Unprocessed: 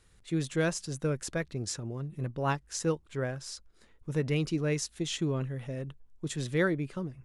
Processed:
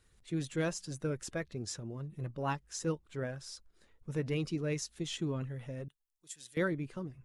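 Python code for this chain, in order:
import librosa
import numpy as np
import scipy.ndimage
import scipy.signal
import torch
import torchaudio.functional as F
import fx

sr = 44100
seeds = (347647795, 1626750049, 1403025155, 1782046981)

y = fx.spec_quant(x, sr, step_db=15)
y = fx.pre_emphasis(y, sr, coefficient=0.97, at=(5.88, 6.57))
y = y * 10.0 ** (-4.5 / 20.0)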